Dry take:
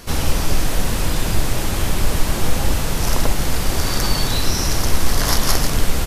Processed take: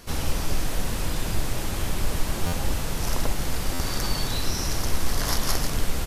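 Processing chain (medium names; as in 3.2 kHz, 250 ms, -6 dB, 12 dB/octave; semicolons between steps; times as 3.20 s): buffer glitch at 2.46/3.73 s, samples 512, times 5; trim -7.5 dB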